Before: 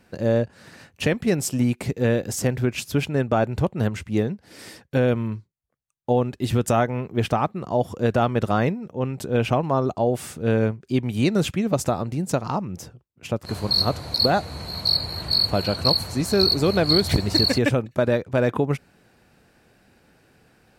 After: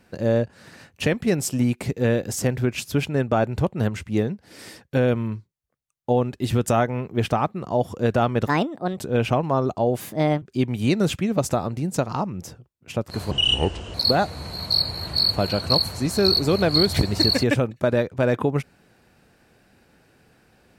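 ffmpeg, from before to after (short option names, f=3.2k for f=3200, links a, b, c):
-filter_complex "[0:a]asplit=7[a][b][c][d][e][f][g];[a]atrim=end=8.474[h];[b]atrim=start=8.47:end=9.17,asetpts=PTS-STARTPTS,asetrate=61740,aresample=44100[i];[c]atrim=start=9.166:end=10.204[j];[d]atrim=start=10.2:end=10.77,asetpts=PTS-STARTPTS,asetrate=59976,aresample=44100,atrim=end_sample=18483,asetpts=PTS-STARTPTS[k];[e]atrim=start=10.766:end=13.664[l];[f]atrim=start=13.66:end=14.09,asetpts=PTS-STARTPTS,asetrate=29988,aresample=44100[m];[g]atrim=start=14.086[n];[h][i]acrossfade=d=0.004:c1=hsin:c2=hsin[o];[o][j]acrossfade=d=0.004:c1=hsin:c2=hsin[p];[p][k]acrossfade=d=0.004:c1=hsin:c2=hsin[q];[q][l]acrossfade=d=0.004:c1=hsin:c2=hsin[r];[r][m]acrossfade=d=0.004:c1=hsin:c2=hsin[s];[s][n]acrossfade=d=0.004:c1=hsin:c2=hsin"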